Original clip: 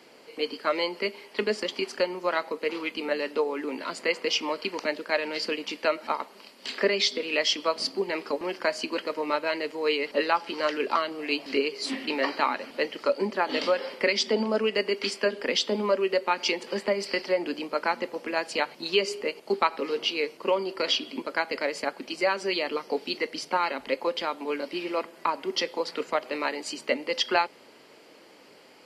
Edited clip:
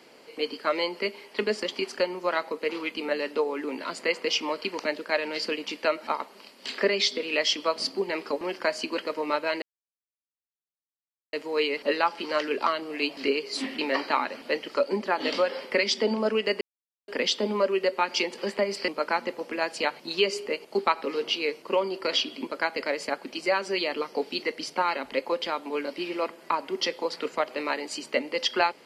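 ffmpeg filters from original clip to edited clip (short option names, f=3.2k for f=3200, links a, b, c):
-filter_complex "[0:a]asplit=5[a][b][c][d][e];[a]atrim=end=9.62,asetpts=PTS-STARTPTS,afade=t=out:st=9.616:d=0.004:c=hsin,apad=pad_dur=1.71[f];[b]atrim=start=9.62:end=14.9,asetpts=PTS-STARTPTS,afade=t=in:d=0.004:c=hsin,afade=t=out:st=5.276:d=0.004:c=hsin[g];[c]atrim=start=14.9:end=15.37,asetpts=PTS-STARTPTS,volume=0[h];[d]atrim=start=15.37:end=17.172,asetpts=PTS-STARTPTS,afade=t=in:d=0.004:c=hsin[i];[e]atrim=start=17.628[j];[f][g][h][i]concat=n=4:v=0:a=1[k];[k][j]acrossfade=d=0.004:c1=hsin:c2=hsin"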